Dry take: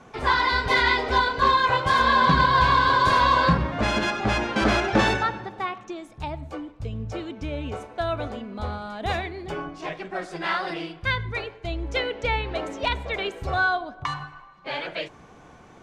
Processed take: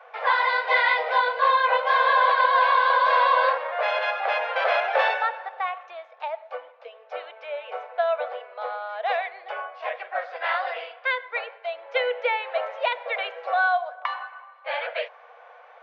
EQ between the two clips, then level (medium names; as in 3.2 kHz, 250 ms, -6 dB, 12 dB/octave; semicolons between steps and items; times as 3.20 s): dynamic bell 1.4 kHz, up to -4 dB, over -31 dBFS, Q 1.5; Gaussian low-pass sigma 2.7 samples; rippled Chebyshev high-pass 480 Hz, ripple 3 dB; +5.5 dB